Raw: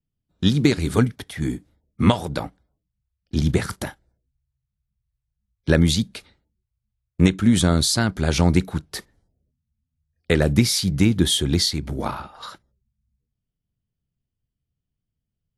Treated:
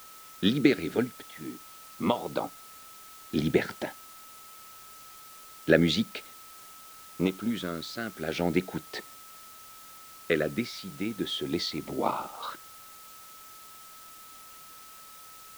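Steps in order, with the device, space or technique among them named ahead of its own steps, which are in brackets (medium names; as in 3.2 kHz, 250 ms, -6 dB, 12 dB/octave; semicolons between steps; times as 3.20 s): shortwave radio (band-pass 310–2800 Hz; tremolo 0.32 Hz, depth 76%; LFO notch saw up 0.4 Hz 760–1900 Hz; whistle 1.3 kHz -54 dBFS; white noise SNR 18 dB); trim +3 dB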